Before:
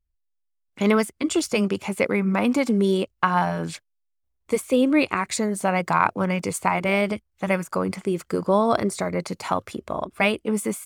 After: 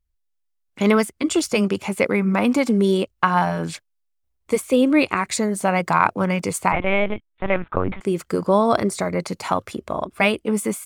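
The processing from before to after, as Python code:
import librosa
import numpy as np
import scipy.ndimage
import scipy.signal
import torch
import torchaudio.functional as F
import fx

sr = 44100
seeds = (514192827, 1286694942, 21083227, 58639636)

y = fx.lpc_vocoder(x, sr, seeds[0], excitation='pitch_kept', order=10, at=(6.72, 8.01))
y = y * librosa.db_to_amplitude(2.5)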